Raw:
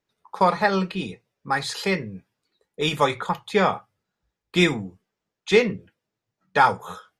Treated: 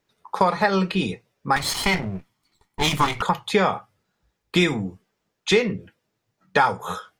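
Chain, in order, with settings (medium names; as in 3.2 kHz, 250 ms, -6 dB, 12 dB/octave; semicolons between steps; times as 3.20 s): 1.56–3.22 s: comb filter that takes the minimum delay 0.92 ms; compression 3:1, threshold -25 dBFS, peak gain reduction 10.5 dB; trim +7.5 dB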